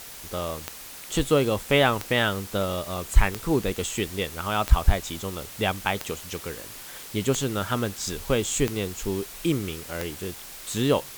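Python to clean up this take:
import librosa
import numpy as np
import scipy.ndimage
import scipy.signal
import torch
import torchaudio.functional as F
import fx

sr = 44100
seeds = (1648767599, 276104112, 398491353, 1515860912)

y = fx.fix_declick_ar(x, sr, threshold=10.0)
y = fx.noise_reduce(y, sr, print_start_s=0.6, print_end_s=1.1, reduce_db=29.0)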